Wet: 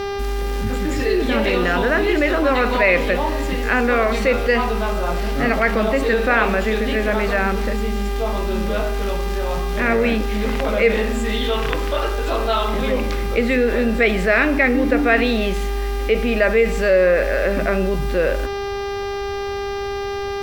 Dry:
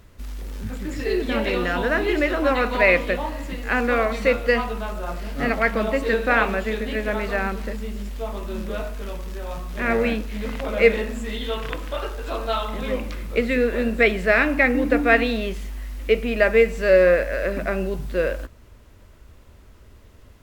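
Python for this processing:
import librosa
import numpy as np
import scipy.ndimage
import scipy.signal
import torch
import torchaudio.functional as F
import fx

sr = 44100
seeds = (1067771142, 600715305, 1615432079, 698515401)

y = fx.dmg_buzz(x, sr, base_hz=400.0, harmonics=15, level_db=-37.0, tilt_db=-7, odd_only=False)
y = fx.env_flatten(y, sr, amount_pct=50)
y = F.gain(torch.from_numpy(y), -1.5).numpy()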